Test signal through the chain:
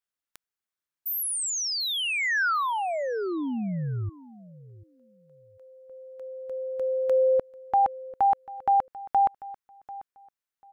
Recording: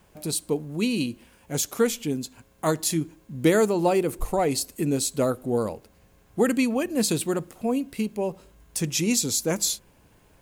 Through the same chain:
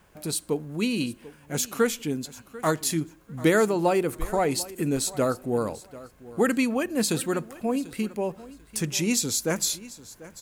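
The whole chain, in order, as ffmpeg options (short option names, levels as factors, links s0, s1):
-filter_complex "[0:a]equalizer=f=1500:w=1.4:g=5.5,asplit=2[s0][s1];[s1]aecho=0:1:742|1484:0.119|0.0238[s2];[s0][s2]amix=inputs=2:normalize=0,volume=0.841"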